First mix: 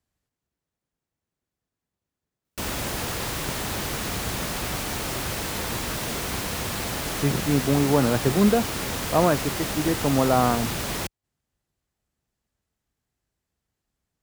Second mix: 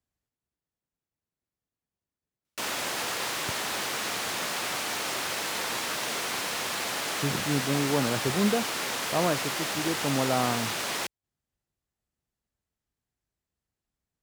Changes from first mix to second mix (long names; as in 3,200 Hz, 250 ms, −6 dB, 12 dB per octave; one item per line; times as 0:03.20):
speech −6.5 dB
background: add meter weighting curve A